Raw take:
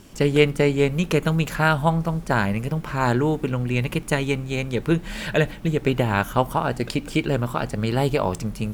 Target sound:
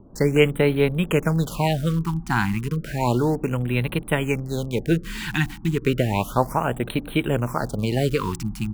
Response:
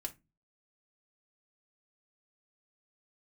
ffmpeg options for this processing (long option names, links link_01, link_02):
-filter_complex "[0:a]acrossover=split=580|1000[link_01][link_02][link_03];[link_03]acrusher=bits=6:mix=0:aa=0.000001[link_04];[link_01][link_02][link_04]amix=inputs=3:normalize=0,afftfilt=real='re*(1-between(b*sr/1024,500*pow(6200/500,0.5+0.5*sin(2*PI*0.32*pts/sr))/1.41,500*pow(6200/500,0.5+0.5*sin(2*PI*0.32*pts/sr))*1.41))':imag='im*(1-between(b*sr/1024,500*pow(6200/500,0.5+0.5*sin(2*PI*0.32*pts/sr))/1.41,500*pow(6200/500,0.5+0.5*sin(2*PI*0.32*pts/sr))*1.41))':win_size=1024:overlap=0.75"